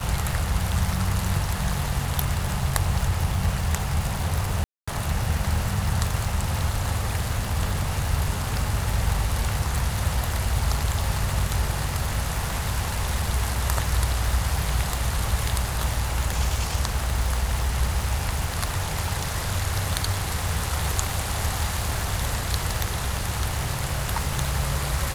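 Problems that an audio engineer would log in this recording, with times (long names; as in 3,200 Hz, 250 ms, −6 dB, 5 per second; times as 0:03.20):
surface crackle 400 per second −28 dBFS
0:04.64–0:04.88: drop-out 235 ms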